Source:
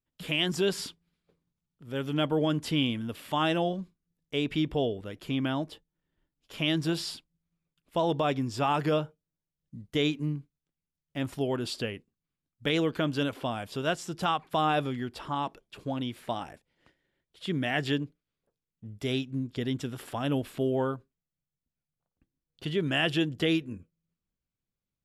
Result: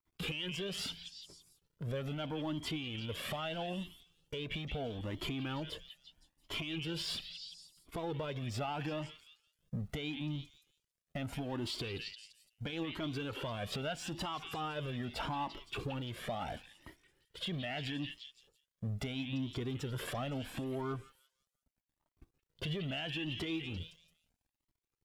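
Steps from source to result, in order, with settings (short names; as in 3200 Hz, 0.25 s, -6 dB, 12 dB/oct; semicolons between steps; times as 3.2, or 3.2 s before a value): G.711 law mismatch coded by mu; gate -58 dBFS, range -9 dB; high shelf 2300 Hz -7.5 dB; compressor 3:1, threshold -38 dBFS, peak gain reduction 11.5 dB; soft clip -28.5 dBFS, distortion -23 dB; dynamic EQ 3000 Hz, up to +8 dB, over -55 dBFS, Q 1.3; on a send: delay with a stepping band-pass 0.171 s, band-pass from 2700 Hz, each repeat 0.7 oct, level -6.5 dB; on the sum: limiter -34.5 dBFS, peak gain reduction 11 dB; cascading flanger rising 0.77 Hz; gain +8.5 dB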